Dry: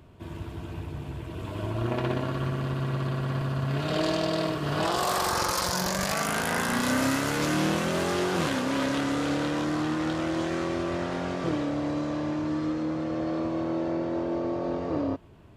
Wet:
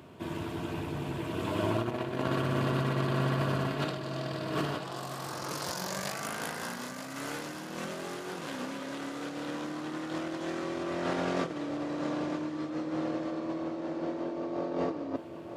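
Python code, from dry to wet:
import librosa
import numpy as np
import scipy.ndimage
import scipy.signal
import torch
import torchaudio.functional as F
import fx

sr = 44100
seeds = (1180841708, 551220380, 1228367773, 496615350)

y = scipy.signal.sosfilt(scipy.signal.butter(2, 170.0, 'highpass', fs=sr, output='sos'), x)
y = fx.over_compress(y, sr, threshold_db=-33.0, ratio=-0.5)
y = fx.echo_feedback(y, sr, ms=932, feedback_pct=50, wet_db=-10.0)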